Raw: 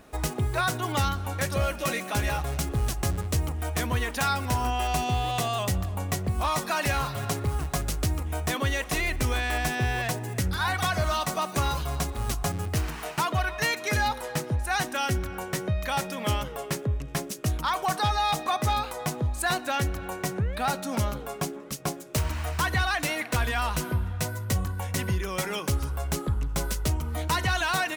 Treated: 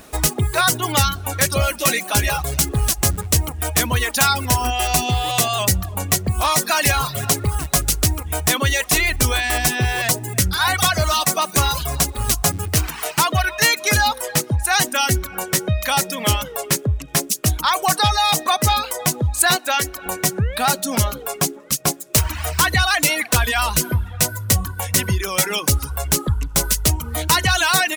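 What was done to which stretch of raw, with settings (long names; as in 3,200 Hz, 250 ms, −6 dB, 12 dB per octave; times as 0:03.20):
0:19.56–0:20.06: bass and treble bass −13 dB, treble −1 dB
whole clip: reverb reduction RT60 0.71 s; high-shelf EQ 3,500 Hz +10.5 dB; level +7.5 dB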